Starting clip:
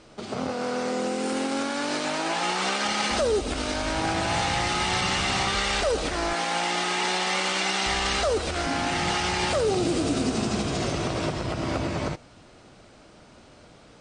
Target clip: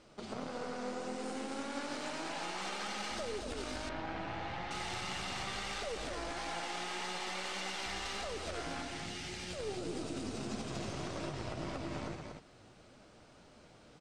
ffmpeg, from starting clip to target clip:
-filter_complex "[0:a]acompressor=threshold=0.0355:ratio=6,asettb=1/sr,asplit=3[s0][s1][s2];[s0]atrim=end=8.824[s3];[s1]atrim=start=8.82:end=9.59,asetpts=PTS-STARTPTS,afade=t=in:d=0.004:c=qsin,afade=t=out:st=0.766:d=0.004:c=qsin,equalizer=f=970:t=o:w=1.2:g=-13[s4];[s2]atrim=start=9.586[s5];[s3][s4]acrossfade=d=0.004:c1=hsin:c2=qsin[s6];[s6][s5]acrossfade=d=0.004:c1=qsin:c2=hsin,aeval=exprs='0.0891*(cos(1*acos(clip(val(0)/0.0891,-1,1)))-cos(1*PI/2))+0.02*(cos(2*acos(clip(val(0)/0.0891,-1,1)))-cos(2*PI/2))':c=same,aecho=1:1:237:0.562,flanger=delay=3.3:depth=6.7:regen=74:speed=1.7:shape=triangular,asettb=1/sr,asplit=3[s7][s8][s9];[s7]atrim=end=3.894[s10];[s8]atrim=start=3.89:end=4.71,asetpts=PTS-STARTPTS,afade=t=in:d=0.004:c=qsin,afade=t=out:st=0.816:d=0.004:c=qsin,lowpass=2800[s11];[s9]atrim=start=4.706[s12];[s10][s11]acrossfade=d=0.004:c1=hsin:c2=qsin[s13];[s13][s12]acrossfade=d=0.004:c1=qsin:c2=hsin,volume=0.562"

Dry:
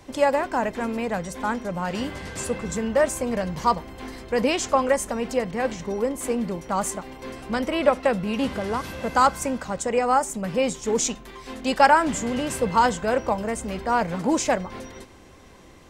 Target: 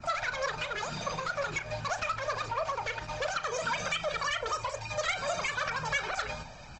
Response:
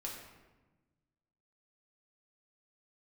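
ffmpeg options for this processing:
-filter_complex "[0:a]bandreject=f=164.9:t=h:w=4,bandreject=f=329.8:t=h:w=4,bandreject=f=494.7:t=h:w=4,bandreject=f=659.6:t=h:w=4,bandreject=f=824.5:t=h:w=4,bandreject=f=989.4:t=h:w=4,bandreject=f=1154.3:t=h:w=4,bandreject=f=1319.2:t=h:w=4,bandreject=f=1484.1:t=h:w=4,bandreject=f=1649:t=h:w=4,bandreject=f=1813.9:t=h:w=4,bandreject=f=1978.8:t=h:w=4,bandreject=f=2143.7:t=h:w=4,bandreject=f=2308.6:t=h:w=4,adynamicequalizer=threshold=0.0178:dfrequency=2000:dqfactor=1.3:tfrequency=2000:tqfactor=1.3:attack=5:release=100:ratio=0.375:range=2:mode=cutabove:tftype=bell,aecho=1:1:3:0.46,acrossover=split=270|1300[s0][s1][s2];[s0]alimiter=level_in=2.51:limit=0.0631:level=0:latency=1:release=202,volume=0.398[s3];[s3][s1][s2]amix=inputs=3:normalize=0,acompressor=threshold=0.0447:ratio=3,aeval=exprs='0.158*sin(PI/2*2.24*val(0)/0.158)':c=same,flanger=delay=1.6:depth=2.6:regen=19:speed=1.4:shape=sinusoidal,asplit=2[s4][s5];[s5]adelay=88,lowpass=f=1100:p=1,volume=0.355,asplit=2[s6][s7];[s7]adelay=88,lowpass=f=1100:p=1,volume=0.23,asplit=2[s8][s9];[s9]adelay=88,lowpass=f=1100:p=1,volume=0.23[s10];[s4][s6][s8][s10]amix=inputs=4:normalize=0,asetrate=103194,aresample=44100,aresample=16000,aresample=44100,volume=0.422" -ar 48000 -c:a libopus -b:a 20k

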